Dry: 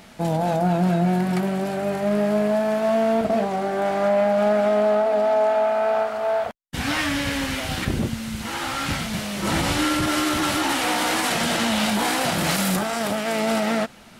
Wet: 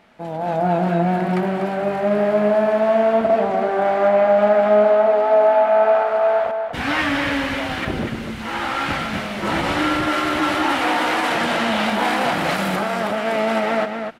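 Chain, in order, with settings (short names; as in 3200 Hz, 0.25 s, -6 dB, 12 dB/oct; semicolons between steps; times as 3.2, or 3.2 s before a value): AGC gain up to 12 dB; tone controls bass -8 dB, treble -15 dB; outdoor echo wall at 42 m, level -6 dB; gain -5 dB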